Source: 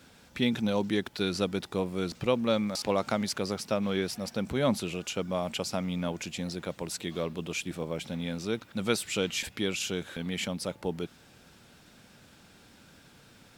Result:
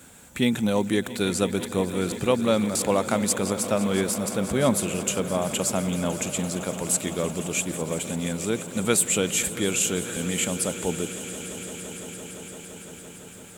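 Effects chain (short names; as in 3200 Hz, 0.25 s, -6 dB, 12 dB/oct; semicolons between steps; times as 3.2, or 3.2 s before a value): resonant high shelf 6300 Hz +7 dB, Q 3; swelling echo 0.17 s, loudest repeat 5, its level -17 dB; gain +5 dB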